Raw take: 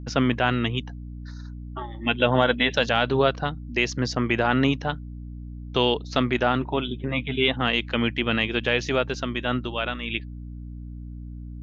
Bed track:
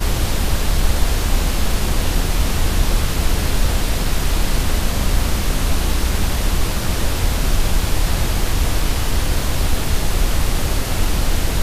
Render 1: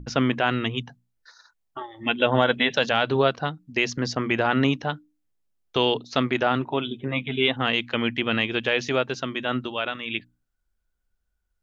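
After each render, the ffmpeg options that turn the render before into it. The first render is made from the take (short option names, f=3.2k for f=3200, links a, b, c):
-af "bandreject=f=60:t=h:w=6,bandreject=f=120:t=h:w=6,bandreject=f=180:t=h:w=6,bandreject=f=240:t=h:w=6,bandreject=f=300:t=h:w=6"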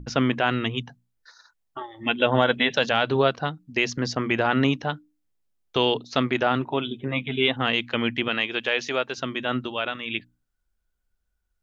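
-filter_complex "[0:a]asettb=1/sr,asplit=3[a][b][c];[a]atrim=end=8.284[d];[b]atrim=start=8.28:end=9.18,asetpts=PTS-STARTPTS,afade=t=in:d=0.004:c=qsin,afade=t=out:st=0.896:d=0.004:c=qsin,highpass=f=460:p=1[e];[c]atrim=start=9.176[f];[d][e]acrossfade=d=0.004:c1=hsin:c2=qsin[g];[g][f]acrossfade=d=0.004:c1=qsin:c2=hsin"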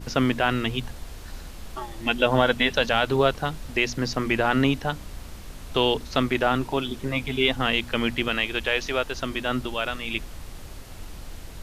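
-filter_complex "[1:a]volume=-21.5dB[a];[0:a][a]amix=inputs=2:normalize=0"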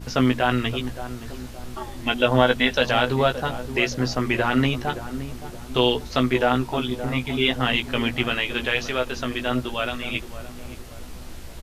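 -filter_complex "[0:a]asplit=2[a][b];[b]adelay=16,volume=-5.5dB[c];[a][c]amix=inputs=2:normalize=0,asplit=2[d][e];[e]adelay=570,lowpass=f=830:p=1,volume=-10.5dB,asplit=2[f][g];[g]adelay=570,lowpass=f=830:p=1,volume=0.5,asplit=2[h][i];[i]adelay=570,lowpass=f=830:p=1,volume=0.5,asplit=2[j][k];[k]adelay=570,lowpass=f=830:p=1,volume=0.5,asplit=2[l][m];[m]adelay=570,lowpass=f=830:p=1,volume=0.5[n];[d][f][h][j][l][n]amix=inputs=6:normalize=0"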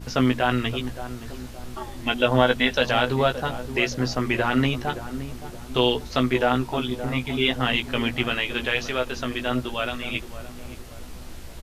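-af "volume=-1dB"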